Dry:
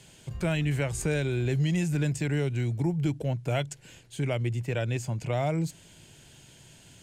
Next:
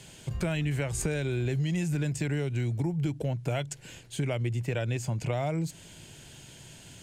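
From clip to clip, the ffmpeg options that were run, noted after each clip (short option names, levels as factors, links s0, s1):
-af "acompressor=threshold=0.0282:ratio=4,volume=1.58"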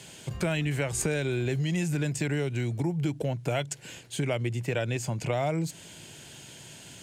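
-af "highpass=f=170:p=1,volume=1.5"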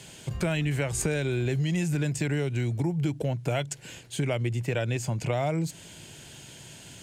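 -af "lowshelf=f=80:g=7.5"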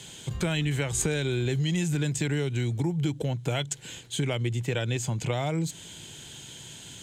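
-af "superequalizer=8b=0.631:13b=2:15b=1.58"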